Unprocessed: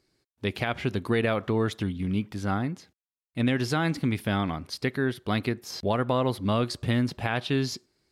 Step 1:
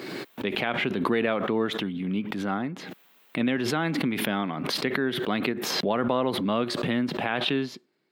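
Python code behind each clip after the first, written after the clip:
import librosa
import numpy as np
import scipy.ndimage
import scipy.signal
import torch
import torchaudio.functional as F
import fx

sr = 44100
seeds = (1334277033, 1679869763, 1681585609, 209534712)

y = scipy.signal.sosfilt(scipy.signal.butter(4, 170.0, 'highpass', fs=sr, output='sos'), x)
y = fx.band_shelf(y, sr, hz=7500.0, db=-13.0, octaves=1.7)
y = fx.pre_swell(y, sr, db_per_s=28.0)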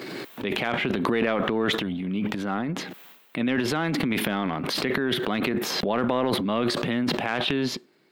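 y = fx.transient(x, sr, attack_db=-1, sustain_db=11)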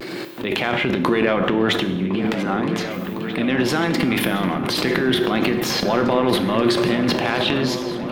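y = fx.vibrato(x, sr, rate_hz=0.58, depth_cents=35.0)
y = fx.echo_opening(y, sr, ms=529, hz=200, octaves=2, feedback_pct=70, wet_db=-6)
y = fx.rev_fdn(y, sr, rt60_s=0.94, lf_ratio=1.0, hf_ratio=0.85, size_ms=17.0, drr_db=7.5)
y = y * 10.0 ** (4.5 / 20.0)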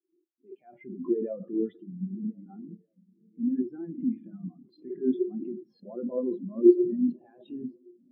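y = fx.spectral_expand(x, sr, expansion=4.0)
y = y * 10.0 ** (-4.0 / 20.0)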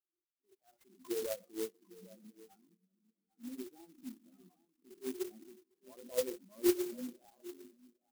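y = fx.auto_wah(x, sr, base_hz=520.0, top_hz=1300.0, q=5.0, full_db=-25.0, direction='down')
y = y + 10.0 ** (-19.5 / 20.0) * np.pad(y, (int(802 * sr / 1000.0), 0))[:len(y)]
y = fx.clock_jitter(y, sr, seeds[0], jitter_ms=0.12)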